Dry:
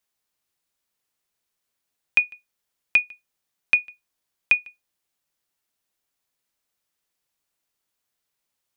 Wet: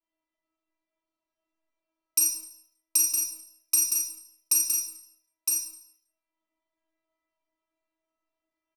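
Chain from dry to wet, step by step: bit-reversed sample order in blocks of 32 samples; band-stop 1.6 kHz, Q 7.1; level-controlled noise filter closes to 1.1 kHz, open at -23.5 dBFS; treble shelf 2.4 kHz +8 dB; inharmonic resonator 320 Hz, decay 0.41 s, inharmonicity 0.002; on a send: delay 962 ms -5 dB; on the sum: Schroeder reverb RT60 0.53 s, combs from 28 ms, DRR -1 dB; three bands compressed up and down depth 40%; trim +4 dB

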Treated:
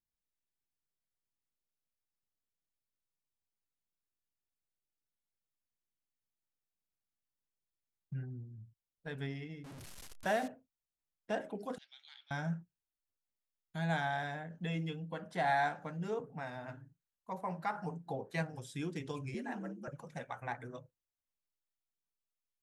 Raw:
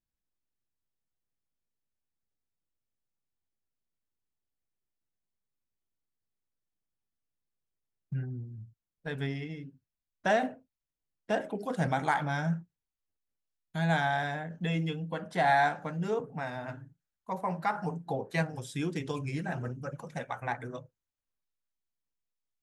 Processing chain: 9.64–10.48 s: one-bit delta coder 64 kbps, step -37 dBFS; 11.78–12.31 s: Butterworth band-pass 3.7 kHz, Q 2.4; 19.34–19.88 s: frequency shift +72 Hz; trim -6.5 dB

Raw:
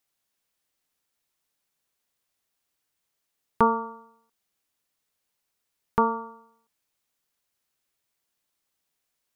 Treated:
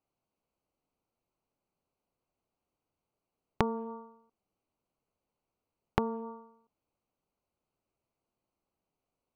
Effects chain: local Wiener filter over 25 samples; compression 5:1, threshold -30 dBFS, peak gain reduction 13.5 dB; dynamic bell 1.6 kHz, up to -3 dB, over -44 dBFS, Q 0.8; low-pass that closes with the level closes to 660 Hz, closed at -35.5 dBFS; trim +5 dB

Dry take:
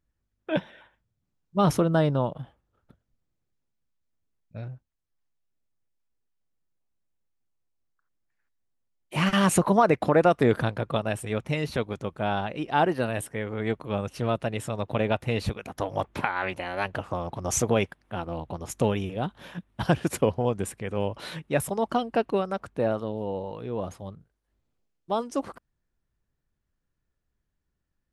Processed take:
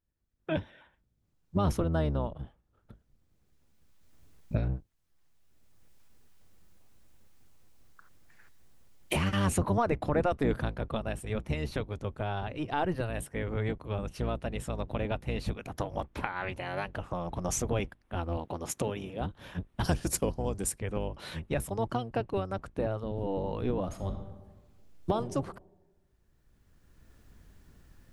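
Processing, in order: octave divider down 1 oct, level +1 dB; recorder AGC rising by 15 dB/s; 17.01–17.49 s: band-stop 4.6 kHz, Q 13; 18.37–19.21 s: Bessel high-pass 180 Hz, order 2; 19.84–20.78 s: high-order bell 7.2 kHz +11.5 dB; 23.85–25.11 s: reverb throw, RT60 1.3 s, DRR 6 dB; trim -8.5 dB

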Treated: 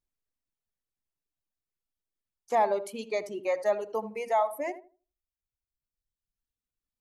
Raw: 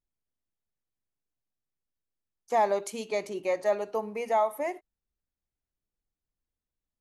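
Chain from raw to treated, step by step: reverb removal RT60 1.7 s; 2.55–2.99 s: peaking EQ 6.5 kHz -10.5 dB 0.77 oct; on a send: filtered feedback delay 80 ms, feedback 27%, low-pass 970 Hz, level -11 dB

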